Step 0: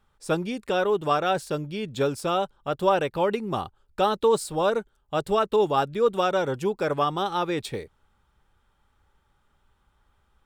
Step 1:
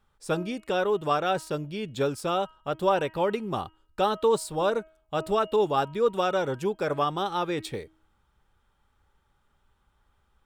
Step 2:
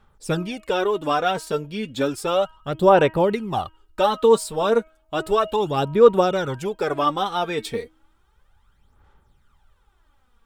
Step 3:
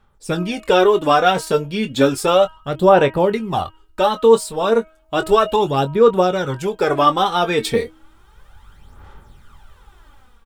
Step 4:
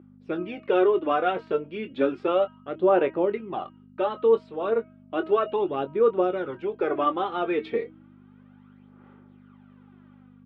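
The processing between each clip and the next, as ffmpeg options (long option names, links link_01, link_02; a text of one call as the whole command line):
ffmpeg -i in.wav -af "bandreject=frequency=317.8:width_type=h:width=4,bandreject=frequency=635.6:width_type=h:width=4,bandreject=frequency=953.4:width_type=h:width=4,bandreject=frequency=1271.2:width_type=h:width=4,bandreject=frequency=1589:width_type=h:width=4,bandreject=frequency=1906.8:width_type=h:width=4,bandreject=frequency=2224.6:width_type=h:width=4,bandreject=frequency=2542.4:width_type=h:width=4,bandreject=frequency=2860.2:width_type=h:width=4,bandreject=frequency=3178:width_type=h:width=4,volume=-2dB" out.wav
ffmpeg -i in.wav -af "aphaser=in_gain=1:out_gain=1:delay=4.5:decay=0.6:speed=0.33:type=sinusoidal,volume=3.5dB" out.wav
ffmpeg -i in.wav -filter_complex "[0:a]asplit=2[link_01][link_02];[link_02]adelay=22,volume=-10dB[link_03];[link_01][link_03]amix=inputs=2:normalize=0,dynaudnorm=framelen=180:gausssize=5:maxgain=15.5dB,volume=-1dB" out.wav
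ffmpeg -i in.wav -af "aeval=exprs='val(0)+0.0447*(sin(2*PI*50*n/s)+sin(2*PI*2*50*n/s)/2+sin(2*PI*3*50*n/s)/3+sin(2*PI*4*50*n/s)/4+sin(2*PI*5*50*n/s)/5)':channel_layout=same,highpass=300,equalizer=frequency=340:width_type=q:width=4:gain=9,equalizer=frequency=910:width_type=q:width=4:gain=-6,equalizer=frequency=1700:width_type=q:width=4:gain=-4,lowpass=frequency=2600:width=0.5412,lowpass=frequency=2600:width=1.3066,volume=-8.5dB" out.wav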